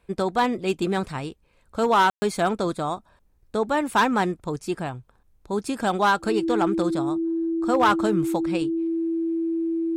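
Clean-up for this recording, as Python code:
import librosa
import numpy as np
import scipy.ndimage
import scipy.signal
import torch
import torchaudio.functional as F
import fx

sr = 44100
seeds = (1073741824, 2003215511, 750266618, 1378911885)

y = fx.fix_declip(x, sr, threshold_db=-13.0)
y = fx.notch(y, sr, hz=330.0, q=30.0)
y = fx.fix_ambience(y, sr, seeds[0], print_start_s=3.03, print_end_s=3.53, start_s=2.1, end_s=2.22)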